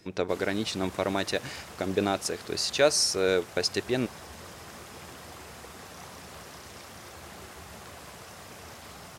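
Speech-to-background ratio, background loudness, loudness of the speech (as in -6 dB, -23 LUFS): 16.5 dB, -44.5 LUFS, -28.0 LUFS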